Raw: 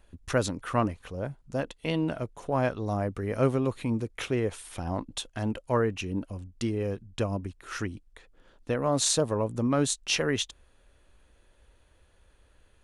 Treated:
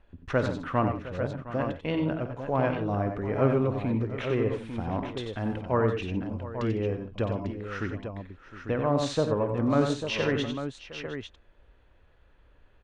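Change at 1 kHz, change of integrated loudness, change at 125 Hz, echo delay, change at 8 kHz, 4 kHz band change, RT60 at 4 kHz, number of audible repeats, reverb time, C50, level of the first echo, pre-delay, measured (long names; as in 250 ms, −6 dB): +1.5 dB, +0.5 dB, +2.0 dB, 53 ms, −16.0 dB, −5.0 dB, no reverb audible, 5, no reverb audible, no reverb audible, −14.5 dB, no reverb audible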